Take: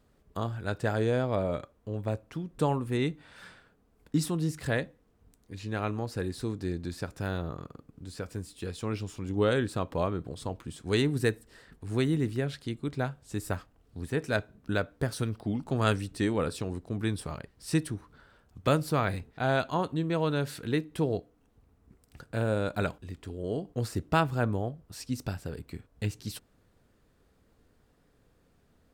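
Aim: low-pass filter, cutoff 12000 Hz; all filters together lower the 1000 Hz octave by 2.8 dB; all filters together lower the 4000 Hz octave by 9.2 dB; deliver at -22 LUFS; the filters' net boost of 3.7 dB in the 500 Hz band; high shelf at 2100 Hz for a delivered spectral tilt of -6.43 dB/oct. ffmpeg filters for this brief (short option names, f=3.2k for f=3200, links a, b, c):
-af "lowpass=12k,equalizer=f=500:t=o:g=6,equalizer=f=1k:t=o:g=-5,highshelf=f=2.1k:g=-4,equalizer=f=4k:t=o:g=-7.5,volume=8.5dB"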